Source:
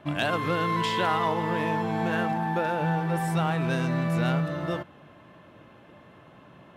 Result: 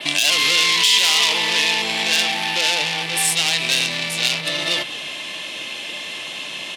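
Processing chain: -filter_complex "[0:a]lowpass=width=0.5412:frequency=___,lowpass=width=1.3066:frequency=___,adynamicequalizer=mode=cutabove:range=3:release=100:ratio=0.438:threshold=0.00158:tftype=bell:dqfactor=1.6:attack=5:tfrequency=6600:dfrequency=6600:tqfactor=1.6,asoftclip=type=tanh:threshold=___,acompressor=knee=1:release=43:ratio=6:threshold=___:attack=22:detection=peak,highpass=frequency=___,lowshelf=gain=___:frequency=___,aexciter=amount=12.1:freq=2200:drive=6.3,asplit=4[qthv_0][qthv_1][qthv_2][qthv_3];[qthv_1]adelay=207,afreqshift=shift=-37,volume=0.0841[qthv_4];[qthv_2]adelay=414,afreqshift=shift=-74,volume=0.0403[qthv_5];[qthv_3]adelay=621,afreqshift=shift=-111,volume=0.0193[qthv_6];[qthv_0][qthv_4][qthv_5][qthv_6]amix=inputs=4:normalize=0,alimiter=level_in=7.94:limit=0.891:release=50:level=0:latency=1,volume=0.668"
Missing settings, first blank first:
10000, 10000, 0.0376, 0.00891, 200, -8, 310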